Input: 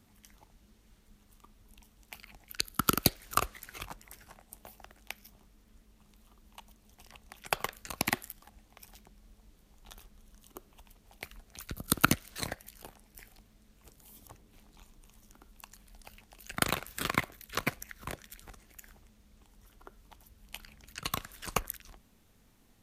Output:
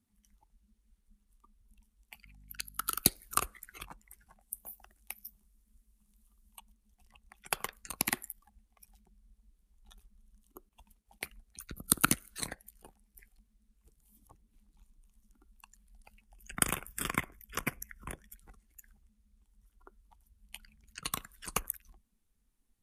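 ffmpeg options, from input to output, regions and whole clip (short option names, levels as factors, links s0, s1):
-filter_complex "[0:a]asettb=1/sr,asplit=3[s0][s1][s2];[s0]atrim=end=2.244[s3];[s1]atrim=start=2.24:end=3,asetpts=PTS-STARTPTS,afade=t=in:d=0.004:c=qsin,afade=t=out:st=0.756:d=0.004:c=qsin,highpass=890,aeval=exprs='val(0)+0.00282*(sin(2*PI*50*n/s)+sin(2*PI*2*50*n/s)/2+sin(2*PI*3*50*n/s)/3+sin(2*PI*4*50*n/s)/4+sin(2*PI*5*50*n/s)/5)':c=same,volume=14.1,asoftclip=hard,volume=0.0708[s4];[s2]atrim=start=2.996[s5];[s3][s4]acrossfade=d=0.004:c1=hsin:c2=qsin[s6];[s6][s5]acrossfade=d=0.004:c1=qsin:c2=hsin,asettb=1/sr,asplit=3[s7][s8][s9];[s7]atrim=end=4.414[s10];[s8]atrim=start=4.41:end=6.59,asetpts=PTS-STARTPTS,afade=t=in:d=0.004:c=qsin,afade=t=out:st=2.176:d=0.004:c=qsin,highshelf=f=6700:g=12,asoftclip=type=hard:threshold=0.0668[s11];[s9]atrim=start=6.586[s12];[s10][s11]acrossfade=d=0.004:c1=hsin:c2=qsin[s13];[s13][s12]acrossfade=d=0.004:c1=qsin:c2=hsin,asettb=1/sr,asplit=3[s14][s15][s16];[s14]atrim=end=10.694[s17];[s15]atrim=start=10.69:end=11.3,asetpts=PTS-STARTPTS,afade=t=in:d=0.004:c=qsin,afade=t=out:st=0.606:d=0.004:c=qsin,highpass=f=64:p=1,agate=range=0.0224:threshold=0.00112:ratio=3:release=100:detection=peak,acontrast=54[s18];[s16]atrim=start=11.296[s19];[s17][s18]acrossfade=d=0.004:c1=hsin:c2=qsin[s20];[s20][s19]acrossfade=d=0.004:c1=qsin:c2=hsin,asettb=1/sr,asplit=3[s21][s22][s23];[s21]atrim=end=16.264[s24];[s22]atrim=start=16.26:end=18.35,asetpts=PTS-STARTPTS,afade=t=in:d=0.004:c=qsin,afade=t=out:st=2.086:d=0.004:c=qsin,asuperstop=centerf=4100:order=4:qfactor=3.7,lowshelf=f=130:g=6[s25];[s23]atrim=start=18.346[s26];[s24][s25]acrossfade=d=0.004:c1=hsin:c2=qsin[s27];[s27][s26]acrossfade=d=0.004:c1=qsin:c2=hsin,afftdn=nr=16:nf=-49,equalizer=f=100:t=o:w=0.67:g=-7,equalizer=f=630:t=o:w=0.67:g=-5,equalizer=f=10000:t=o:w=0.67:g=10,volume=0.708"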